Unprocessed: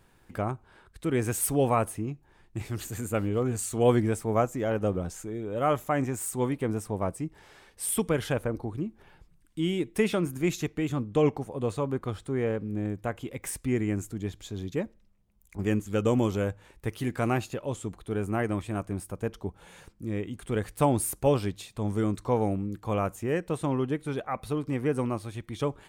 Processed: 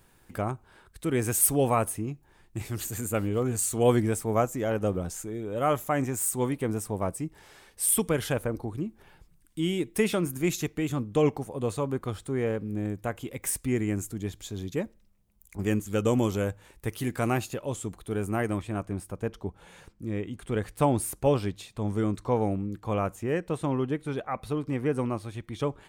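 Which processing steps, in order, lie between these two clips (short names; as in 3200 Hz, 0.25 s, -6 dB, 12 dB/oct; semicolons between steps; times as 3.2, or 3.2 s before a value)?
high shelf 6900 Hz +9 dB, from 18.58 s -3.5 dB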